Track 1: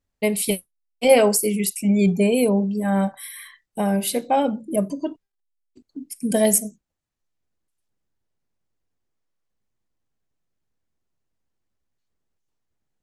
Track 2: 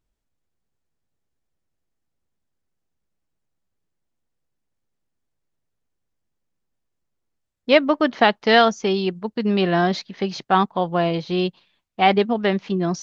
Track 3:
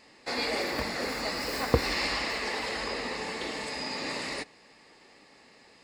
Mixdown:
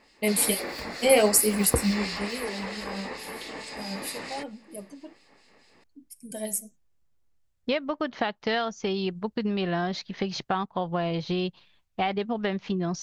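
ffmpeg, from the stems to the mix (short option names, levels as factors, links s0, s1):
-filter_complex "[0:a]highshelf=f=3800:g=7.5,flanger=delay=3.5:depth=7.8:regen=42:speed=1.3:shape=triangular,volume=0.891,afade=t=out:st=1.81:d=0.26:silence=0.237137[s0];[1:a]asubboost=boost=2.5:cutoff=130,acompressor=threshold=0.0501:ratio=6,volume=1.12[s1];[2:a]acrossover=split=2300[s2][s3];[s2]aeval=exprs='val(0)*(1-0.7/2+0.7/2*cos(2*PI*4.5*n/s))':c=same[s4];[s3]aeval=exprs='val(0)*(1-0.7/2-0.7/2*cos(2*PI*4.5*n/s))':c=same[s5];[s4][s5]amix=inputs=2:normalize=0,volume=1[s6];[s0][s1][s6]amix=inputs=3:normalize=0"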